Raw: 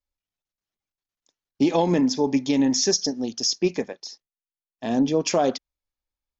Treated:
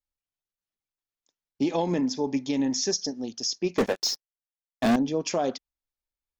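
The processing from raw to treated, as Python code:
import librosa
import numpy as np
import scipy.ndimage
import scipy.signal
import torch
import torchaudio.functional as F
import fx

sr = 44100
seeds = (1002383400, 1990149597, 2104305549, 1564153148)

y = fx.leveller(x, sr, passes=5, at=(3.78, 4.96))
y = y * librosa.db_to_amplitude(-5.5)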